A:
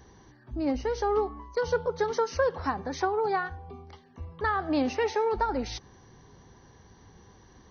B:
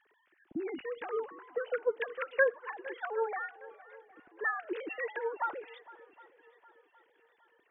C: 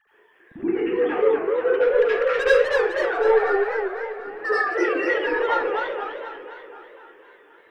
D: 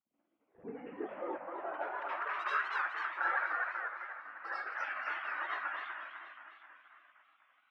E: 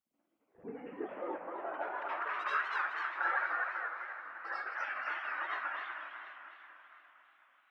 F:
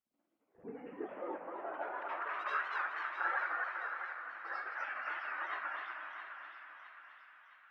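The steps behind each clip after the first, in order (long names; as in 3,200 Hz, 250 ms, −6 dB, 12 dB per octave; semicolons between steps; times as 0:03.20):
three sine waves on the formant tracks; flat-topped bell 740 Hz −9 dB; feedback echo with a long and a short gap by turns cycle 763 ms, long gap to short 1.5 to 1, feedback 40%, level −20 dB
soft clipping −27 dBFS, distortion −10 dB; convolution reverb RT60 0.55 s, pre-delay 70 ms, DRR −9.5 dB; feedback echo with a swinging delay time 247 ms, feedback 55%, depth 200 cents, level −4.5 dB; level −1 dB
gate on every frequency bin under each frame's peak −15 dB weak; band-pass filter sweep 250 Hz → 1,400 Hz, 0:00.08–0:02.73
feedback echo with a swinging delay time 157 ms, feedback 77%, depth 176 cents, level −16 dB
high-shelf EQ 4,100 Hz −5.5 dB; on a send: feedback echo with a high-pass in the loop 664 ms, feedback 58%, high-pass 980 Hz, level −9 dB; on the sum: level −2 dB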